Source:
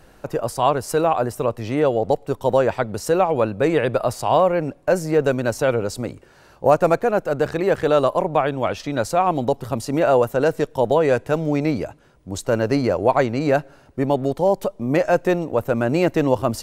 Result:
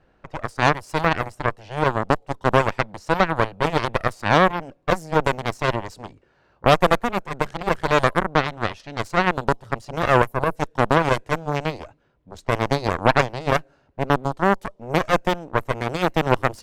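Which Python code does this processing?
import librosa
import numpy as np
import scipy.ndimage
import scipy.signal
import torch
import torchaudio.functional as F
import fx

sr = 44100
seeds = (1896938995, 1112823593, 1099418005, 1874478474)

y = fx.env_lowpass(x, sr, base_hz=3000.0, full_db=-15.0)
y = fx.spec_box(y, sr, start_s=10.27, length_s=0.29, low_hz=1100.0, high_hz=9200.0, gain_db=-11)
y = fx.cheby_harmonics(y, sr, harmonics=(4, 7), levels_db=(-10, -14), full_scale_db=-2.5)
y = F.gain(torch.from_numpy(y), -2.0).numpy()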